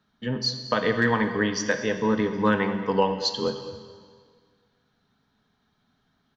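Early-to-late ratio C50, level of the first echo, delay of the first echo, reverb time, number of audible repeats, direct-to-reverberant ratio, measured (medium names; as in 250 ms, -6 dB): 8.5 dB, -16.5 dB, 215 ms, 1.8 s, 1, 7.0 dB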